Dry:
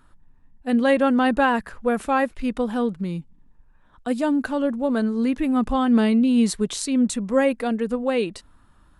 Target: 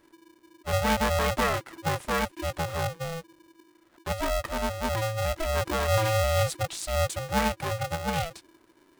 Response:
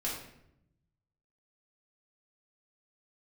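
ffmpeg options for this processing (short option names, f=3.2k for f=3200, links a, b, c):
-af "aeval=exprs='val(0)*sgn(sin(2*PI*330*n/s))':c=same,volume=-6.5dB"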